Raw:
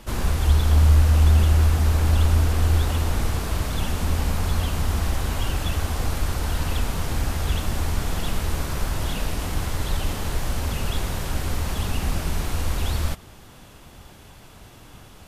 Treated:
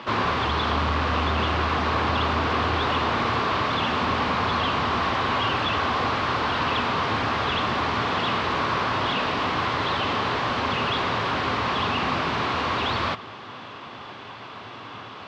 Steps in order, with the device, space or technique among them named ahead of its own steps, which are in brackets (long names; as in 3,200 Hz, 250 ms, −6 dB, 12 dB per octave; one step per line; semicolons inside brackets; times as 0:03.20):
overdrive pedal into a guitar cabinet (mid-hump overdrive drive 25 dB, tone 5,000 Hz, clips at −6 dBFS; loudspeaker in its box 100–4,200 Hz, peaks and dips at 110 Hz +10 dB, 250 Hz +5 dB, 400 Hz +3 dB, 1,100 Hz +8 dB)
level −7.5 dB